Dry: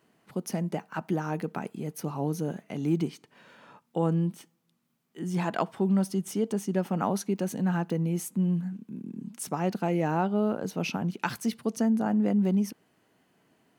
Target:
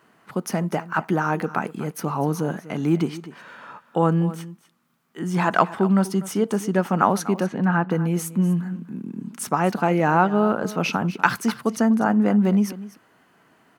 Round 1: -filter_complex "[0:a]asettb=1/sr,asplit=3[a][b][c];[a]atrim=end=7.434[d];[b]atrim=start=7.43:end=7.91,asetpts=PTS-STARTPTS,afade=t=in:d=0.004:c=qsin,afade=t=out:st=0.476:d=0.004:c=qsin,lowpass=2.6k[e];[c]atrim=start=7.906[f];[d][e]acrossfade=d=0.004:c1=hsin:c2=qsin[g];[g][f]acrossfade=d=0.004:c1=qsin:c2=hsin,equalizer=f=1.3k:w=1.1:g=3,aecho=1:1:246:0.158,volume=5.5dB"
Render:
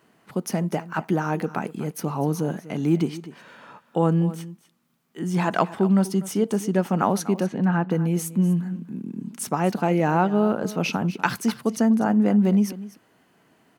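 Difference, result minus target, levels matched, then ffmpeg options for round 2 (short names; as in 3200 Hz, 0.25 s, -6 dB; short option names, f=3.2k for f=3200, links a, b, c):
1000 Hz band -3.0 dB
-filter_complex "[0:a]asettb=1/sr,asplit=3[a][b][c];[a]atrim=end=7.434[d];[b]atrim=start=7.43:end=7.91,asetpts=PTS-STARTPTS,afade=t=in:d=0.004:c=qsin,afade=t=out:st=0.476:d=0.004:c=qsin,lowpass=2.6k[e];[c]atrim=start=7.906[f];[d][e]acrossfade=d=0.004:c1=hsin:c2=qsin[g];[g][f]acrossfade=d=0.004:c1=qsin:c2=hsin,equalizer=f=1.3k:w=1.1:g=9.5,aecho=1:1:246:0.158,volume=5.5dB"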